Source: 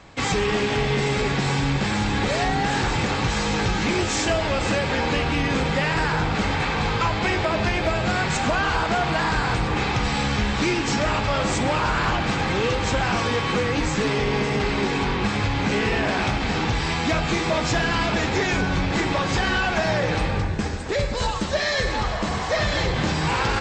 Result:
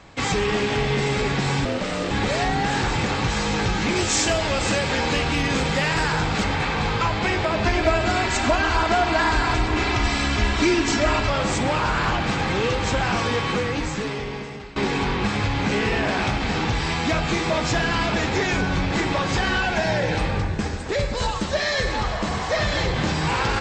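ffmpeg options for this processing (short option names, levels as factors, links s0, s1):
-filter_complex "[0:a]asettb=1/sr,asplit=3[s0][s1][s2];[s0]atrim=end=1.654[s3];[s1]atrim=start=1.65:end=2.11,asetpts=PTS-STARTPTS,afade=t=in:d=0.004:c=qsin,afade=t=out:st=0.456:d=0.004:c=qsin,aeval=exprs='val(0)*sin(2*PI*390*n/s)':c=same[s4];[s2]atrim=start=2.106[s5];[s3][s4]acrossfade=d=0.004:c1=hsin:c2=qsin[s6];[s6][s5]acrossfade=d=0.004:c1=qsin:c2=hsin,asettb=1/sr,asplit=3[s7][s8][s9];[s7]atrim=end=3.964[s10];[s8]atrim=start=3.96:end=6.44,asetpts=PTS-STARTPTS,afade=t=in:d=0.004:c=qsin,afade=t=out:st=2.476:d=0.004:c=qsin,aemphasis=mode=production:type=cd[s11];[s9]atrim=start=6.436[s12];[s10][s11]acrossfade=d=0.004:c1=hsin:c2=qsin[s13];[s13][s12]acrossfade=d=0.004:c1=qsin:c2=hsin,asettb=1/sr,asplit=3[s14][s15][s16];[s14]atrim=end=7.654[s17];[s15]atrim=start=7.65:end=11.3,asetpts=PTS-STARTPTS,afade=t=in:d=0.004:c=qsin,afade=t=out:st=3.646:d=0.004:c=qsin,aecho=1:1:3:0.8,atrim=end_sample=160965[s18];[s16]atrim=start=11.296[s19];[s17][s18]acrossfade=d=0.004:c1=hsin:c2=qsin[s20];[s20][s19]acrossfade=d=0.004:c1=qsin:c2=hsin,asettb=1/sr,asplit=3[s21][s22][s23];[s21]atrim=end=19.624[s24];[s22]atrim=start=19.62:end=20.18,asetpts=PTS-STARTPTS,afade=t=in:d=0.004:c=qsin,afade=t=out:st=0.556:d=0.004:c=qsin,asuperstop=centerf=1200:order=8:qfactor=6.2[s25];[s23]atrim=start=20.176[s26];[s24][s25]acrossfade=d=0.004:c1=hsin:c2=qsin[s27];[s27][s26]acrossfade=d=0.004:c1=qsin:c2=hsin,asplit=2[s28][s29];[s28]atrim=end=14.76,asetpts=PTS-STARTPTS,afade=t=out:st=13.41:d=1.35:silence=0.0944061[s30];[s29]atrim=start=14.76,asetpts=PTS-STARTPTS,afade=t=in:d=0.004:c=hsin:silence=0.0944061[s31];[s30][s31]concat=n=2:v=0:a=1"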